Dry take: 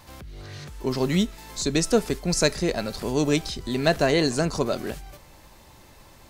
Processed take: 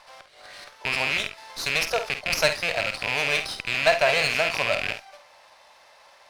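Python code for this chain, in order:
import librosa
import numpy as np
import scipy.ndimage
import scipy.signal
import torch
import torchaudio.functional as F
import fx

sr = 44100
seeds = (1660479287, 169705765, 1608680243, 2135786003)

p1 = fx.rattle_buzz(x, sr, strikes_db=-32.0, level_db=-14.0)
p2 = scipy.signal.sosfilt(scipy.signal.ellip(3, 1.0, 40, [590.0, 5700.0], 'bandpass', fs=sr, output='sos'), p1)
p3 = p2 + fx.room_early_taps(p2, sr, ms=(50, 69), db=(-9.5, -15.0), dry=0)
p4 = fx.running_max(p3, sr, window=3)
y = p4 * librosa.db_to_amplitude(2.0)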